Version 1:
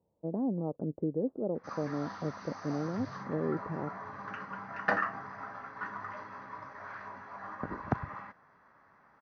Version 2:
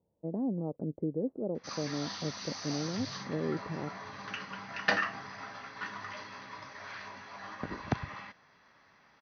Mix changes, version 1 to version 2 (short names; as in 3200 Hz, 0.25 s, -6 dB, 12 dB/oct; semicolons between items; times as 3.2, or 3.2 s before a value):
speech: add air absorption 370 m; master: add resonant high shelf 2100 Hz +14 dB, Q 1.5